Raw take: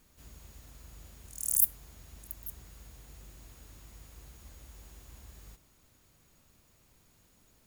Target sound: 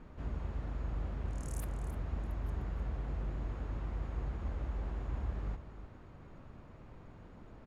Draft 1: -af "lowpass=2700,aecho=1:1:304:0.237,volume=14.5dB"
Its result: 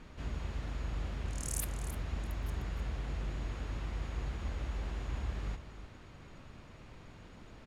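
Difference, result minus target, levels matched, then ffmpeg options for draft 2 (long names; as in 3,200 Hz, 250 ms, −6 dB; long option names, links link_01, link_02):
2,000 Hz band +5.5 dB
-af "lowpass=1300,aecho=1:1:304:0.237,volume=14.5dB"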